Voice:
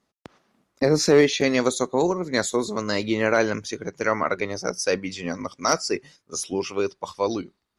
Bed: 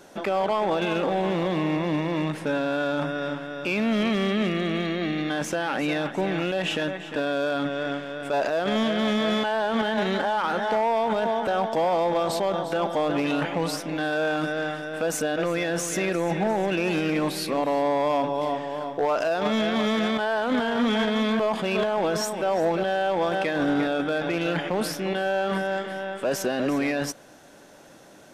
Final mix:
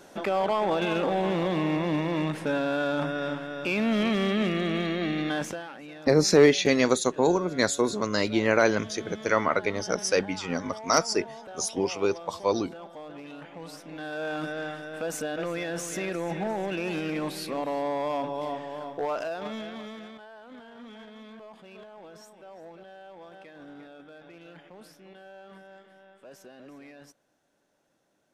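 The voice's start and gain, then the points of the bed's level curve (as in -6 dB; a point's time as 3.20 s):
5.25 s, -1.0 dB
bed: 5.38 s -1.5 dB
5.78 s -18 dB
13.44 s -18 dB
14.37 s -6 dB
19.13 s -6 dB
20.31 s -23 dB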